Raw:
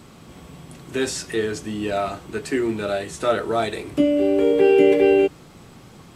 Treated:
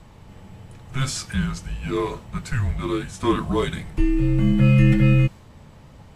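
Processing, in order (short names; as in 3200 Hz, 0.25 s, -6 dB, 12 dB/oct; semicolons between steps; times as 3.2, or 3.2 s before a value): frequency shift -260 Hz; mismatched tape noise reduction decoder only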